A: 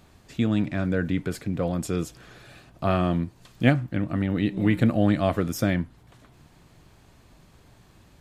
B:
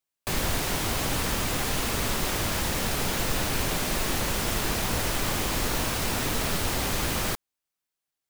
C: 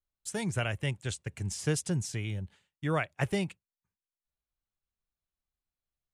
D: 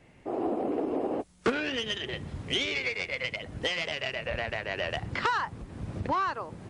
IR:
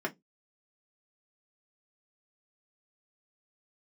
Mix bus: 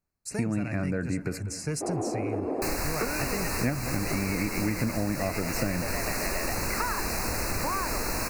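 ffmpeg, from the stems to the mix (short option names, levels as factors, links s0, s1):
-filter_complex "[0:a]agate=range=0.0178:threshold=0.00562:ratio=16:detection=peak,volume=1.33,asplit=3[s0][s1][s2];[s0]atrim=end=1.38,asetpts=PTS-STARTPTS,afade=t=out:st=1.376:d=0.004:c=hsin[s3];[s1]atrim=start=1.38:end=3.47,asetpts=PTS-STARTPTS,volume=0[s4];[s2]atrim=start=3.47,asetpts=PTS-STARTPTS,afade=t=in:d=0.004:c=hsin[s5];[s3][s4][s5]concat=n=3:v=0:a=1,asplit=2[s6][s7];[s7]volume=0.133[s8];[1:a]equalizer=f=130:w=1.5:g=-7,adelay=2350,volume=1.19[s9];[2:a]asoftclip=type=tanh:threshold=0.075,volume=1.19[s10];[3:a]adelay=1550,volume=1.19[s11];[s8]aecho=0:1:197|394|591|788|985|1182|1379|1576|1773:1|0.57|0.325|0.185|0.106|0.0602|0.0343|0.0195|0.0111[s12];[s6][s9][s10][s11][s12]amix=inputs=5:normalize=0,asuperstop=centerf=3300:order=12:qfactor=2.6,acompressor=threshold=0.0501:ratio=4"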